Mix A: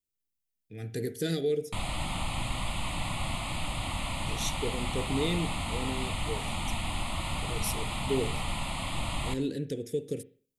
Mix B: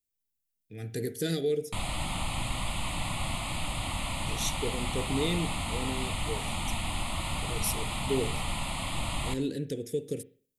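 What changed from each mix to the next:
master: add high shelf 7000 Hz +4.5 dB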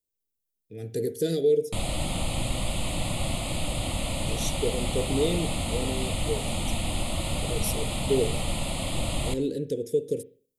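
background +4.5 dB; master: add ten-band EQ 500 Hz +10 dB, 1000 Hz -10 dB, 2000 Hz -5 dB

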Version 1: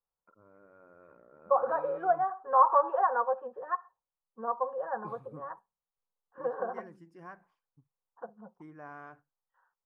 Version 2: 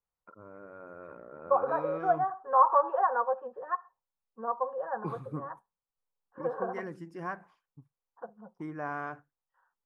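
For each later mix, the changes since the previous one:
first voice +10.5 dB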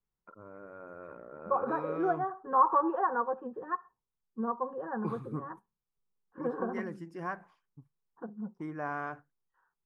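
second voice: add resonant low shelf 430 Hz +10 dB, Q 3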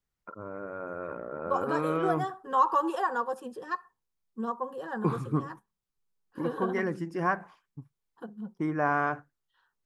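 first voice +9.5 dB; second voice: remove LPF 1500 Hz 24 dB/oct

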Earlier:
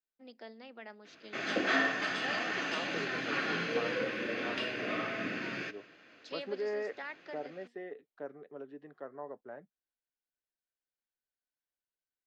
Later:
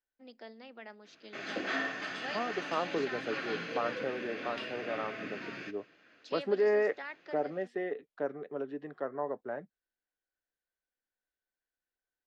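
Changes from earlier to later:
second voice +8.5 dB; background -5.0 dB

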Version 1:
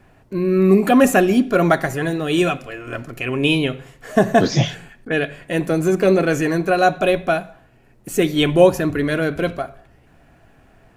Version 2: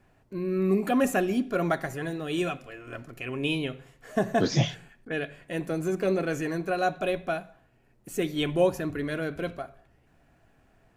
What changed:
first voice -11.0 dB; second voice -6.5 dB

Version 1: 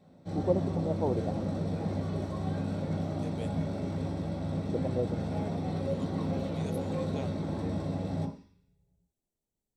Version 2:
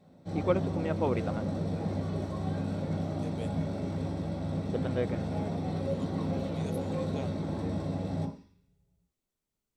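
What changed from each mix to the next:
first voice: remove steep low-pass 910 Hz 48 dB/oct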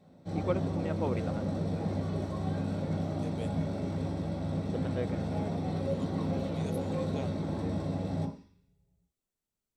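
first voice -4.0 dB

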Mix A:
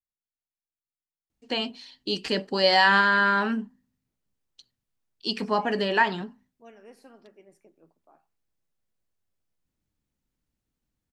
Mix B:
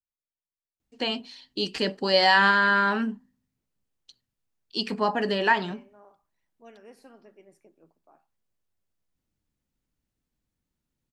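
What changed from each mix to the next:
first voice: entry -0.50 s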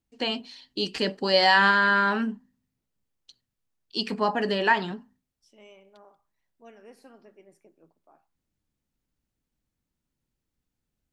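first voice: entry -0.80 s

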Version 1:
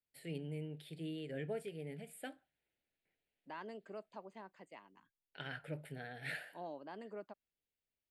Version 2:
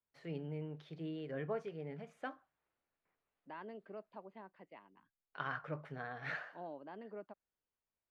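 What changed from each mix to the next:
first voice: remove fixed phaser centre 2700 Hz, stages 4; master: add air absorption 280 m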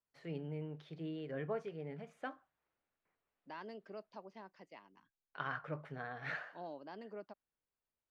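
second voice: remove running mean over 8 samples

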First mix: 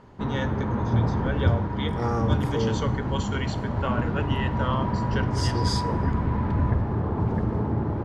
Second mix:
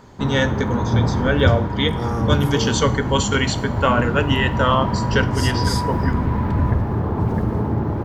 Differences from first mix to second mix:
first voice +11.5 dB; background +4.5 dB; master: remove air absorption 71 m

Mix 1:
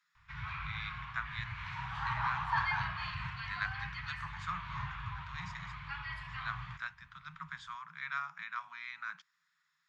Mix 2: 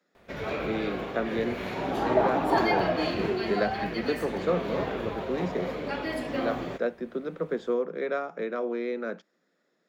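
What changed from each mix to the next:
first sound: remove tape spacing loss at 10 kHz 24 dB; master: remove Chebyshev band-stop 140–1000 Hz, order 4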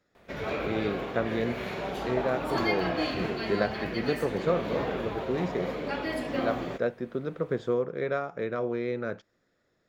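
speech: remove steep high-pass 160 Hz 96 dB/oct; second sound -10.5 dB

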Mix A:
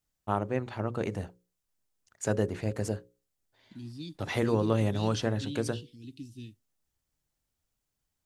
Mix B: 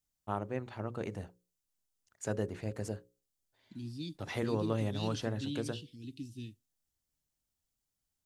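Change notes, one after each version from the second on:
first voice -6.5 dB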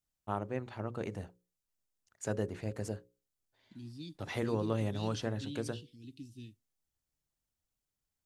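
second voice -4.5 dB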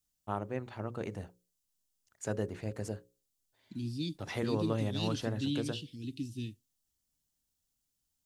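second voice +9.5 dB

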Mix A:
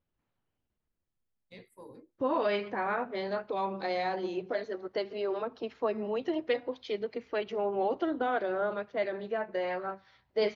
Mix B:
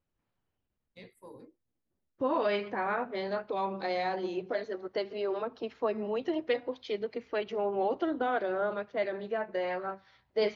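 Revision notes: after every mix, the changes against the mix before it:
first voice: entry -0.55 s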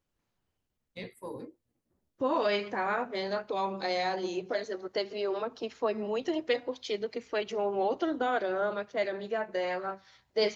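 first voice +9.0 dB; second voice: remove air absorption 210 m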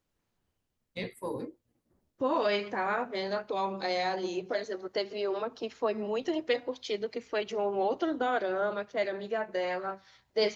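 first voice +5.0 dB

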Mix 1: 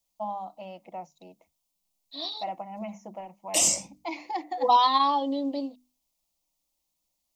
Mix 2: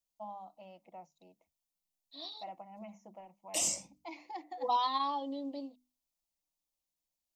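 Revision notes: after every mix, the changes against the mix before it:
first voice -11.5 dB; second voice -10.5 dB; background -9.5 dB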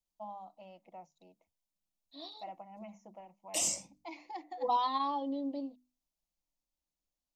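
second voice: add tilt -2 dB/oct

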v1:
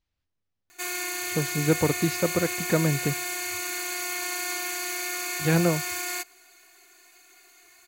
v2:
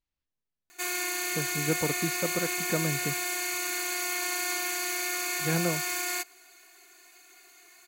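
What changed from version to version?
speech -6.5 dB; master: add bell 93 Hz -13.5 dB 0.28 oct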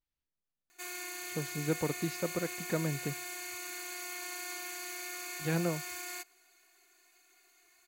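speech -3.0 dB; background -10.5 dB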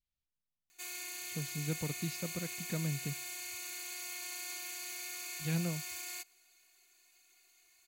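background: add bell 930 Hz +3 dB 1.5 oct; master: add band shelf 720 Hz -10 dB 3 oct

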